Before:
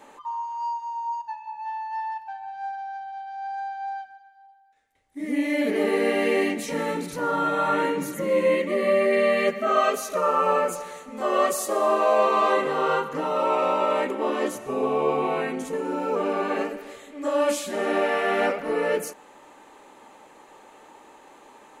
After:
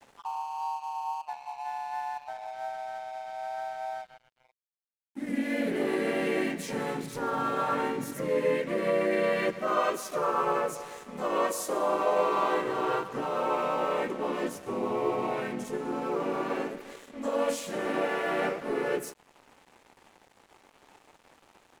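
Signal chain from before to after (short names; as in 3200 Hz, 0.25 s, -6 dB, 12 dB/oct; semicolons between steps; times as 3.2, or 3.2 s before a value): in parallel at +2.5 dB: compressor, threshold -35 dBFS, peak gain reduction 18 dB; on the sum: frequency shift -17 Hz; harmoniser -3 st -5 dB, +3 st -13 dB; crossover distortion -40 dBFS; gain -8.5 dB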